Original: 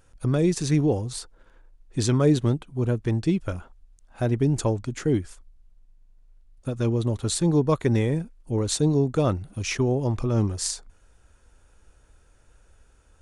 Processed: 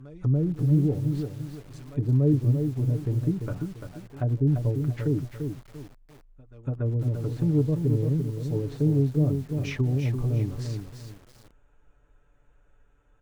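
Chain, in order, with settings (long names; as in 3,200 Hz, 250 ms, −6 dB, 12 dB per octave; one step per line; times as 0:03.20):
adaptive Wiener filter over 9 samples
echo ahead of the sound 286 ms −21 dB
dynamic equaliser 130 Hz, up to +4 dB, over −40 dBFS, Q 3.8
comb filter 6.9 ms, depth 64%
treble cut that deepens with the level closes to 380 Hz, closed at −16.5 dBFS
feedback echo at a low word length 343 ms, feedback 35%, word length 7 bits, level −6 dB
level −5.5 dB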